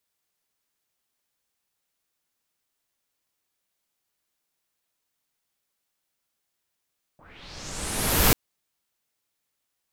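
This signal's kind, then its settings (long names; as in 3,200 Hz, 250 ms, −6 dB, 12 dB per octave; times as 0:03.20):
filter sweep on noise pink, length 1.14 s lowpass, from 600 Hz, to 15,000 Hz, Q 3, linear, gain ramp +36 dB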